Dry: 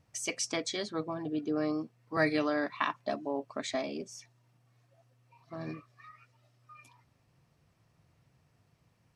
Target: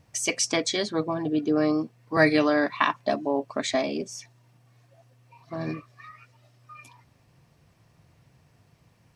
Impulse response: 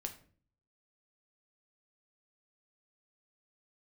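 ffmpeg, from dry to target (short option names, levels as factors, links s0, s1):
-af "bandreject=f=1300:w=16,volume=2.66"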